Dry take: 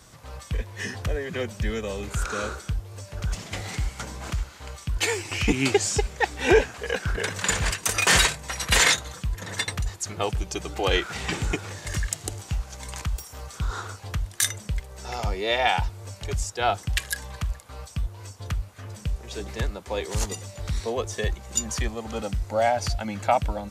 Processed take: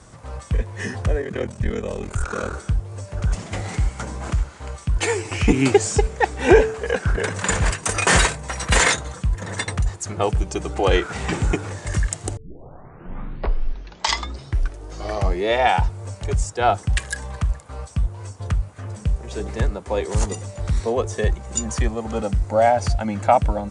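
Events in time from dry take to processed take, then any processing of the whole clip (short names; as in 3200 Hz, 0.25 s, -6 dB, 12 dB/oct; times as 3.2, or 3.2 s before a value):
1.2–2.53 ring modulator 20 Hz
12.37 tape start 3.18 s
whole clip: steep low-pass 9900 Hz 72 dB/oct; bell 4000 Hz -9.5 dB 2.2 oct; de-hum 147 Hz, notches 3; gain +7 dB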